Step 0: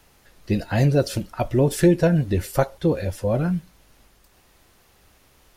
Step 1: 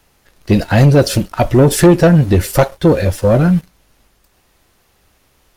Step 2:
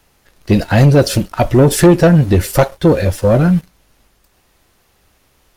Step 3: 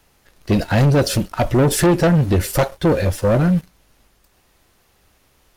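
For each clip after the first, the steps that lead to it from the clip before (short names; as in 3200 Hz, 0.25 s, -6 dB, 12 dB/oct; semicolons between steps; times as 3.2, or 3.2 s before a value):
sample leveller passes 2; gain +4.5 dB
nothing audible
soft clip -8 dBFS, distortion -15 dB; gain -2 dB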